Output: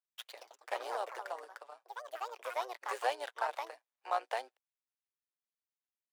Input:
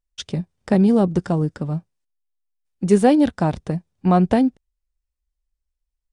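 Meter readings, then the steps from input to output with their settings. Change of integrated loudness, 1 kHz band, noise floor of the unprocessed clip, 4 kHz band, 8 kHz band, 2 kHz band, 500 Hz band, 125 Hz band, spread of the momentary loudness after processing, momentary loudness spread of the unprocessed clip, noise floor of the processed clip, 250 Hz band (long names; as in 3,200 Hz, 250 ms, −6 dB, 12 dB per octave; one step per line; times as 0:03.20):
−20.0 dB, −10.5 dB, −81 dBFS, −9.5 dB, −14.0 dB, −6.5 dB, −19.0 dB, below −40 dB, 16 LU, 13 LU, below −85 dBFS, below −40 dB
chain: running median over 9 samples
delay with pitch and tempo change per echo 148 ms, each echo +4 semitones, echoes 3, each echo −6 dB
amplitude modulation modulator 120 Hz, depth 50%
Bessel high-pass filter 1,000 Hz, order 8
level −4.5 dB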